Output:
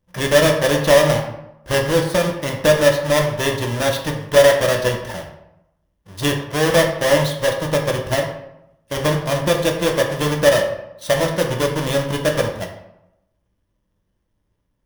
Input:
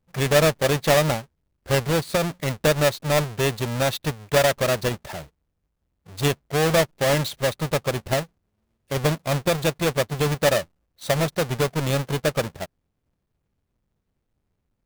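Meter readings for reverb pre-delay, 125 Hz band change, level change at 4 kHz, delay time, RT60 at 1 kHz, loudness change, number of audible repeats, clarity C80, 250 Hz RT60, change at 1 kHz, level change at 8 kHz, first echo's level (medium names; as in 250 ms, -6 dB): 3 ms, +1.5 dB, +4.5 dB, no echo, 0.85 s, +5.0 dB, no echo, 9.0 dB, 0.85 s, +3.5 dB, +3.5 dB, no echo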